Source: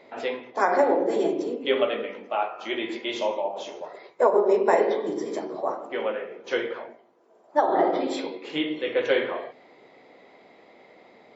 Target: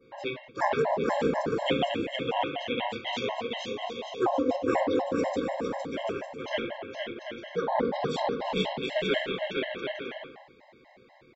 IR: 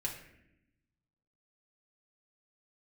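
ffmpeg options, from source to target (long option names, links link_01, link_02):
-filter_complex "[0:a]equalizer=frequency=1200:width=5.2:gain=-5.5,aeval=exprs='val(0)*sin(2*PI*120*n/s)':channel_layout=same,adynamicequalizer=threshold=0.00562:dfrequency=3200:dqfactor=0.89:tfrequency=3200:tqfactor=0.89:attack=5:release=100:ratio=0.375:range=3:mode=boostabove:tftype=bell,asplit=2[link_01][link_02];[link_02]aecho=0:1:460|736|901.6|1001|1061:0.631|0.398|0.251|0.158|0.1[link_03];[link_01][link_03]amix=inputs=2:normalize=0,afftfilt=real='re*gt(sin(2*PI*4.1*pts/sr)*(1-2*mod(floor(b*sr/1024/540),2)),0)':imag='im*gt(sin(2*PI*4.1*pts/sr)*(1-2*mod(floor(b*sr/1024/540),2)),0)':win_size=1024:overlap=0.75"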